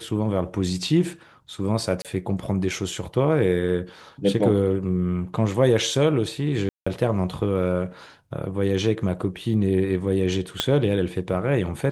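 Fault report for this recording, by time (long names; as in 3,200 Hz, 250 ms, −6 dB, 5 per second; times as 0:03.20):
0:02.02–0:02.05: drop-out 27 ms
0:06.69–0:06.87: drop-out 175 ms
0:10.60: click −6 dBFS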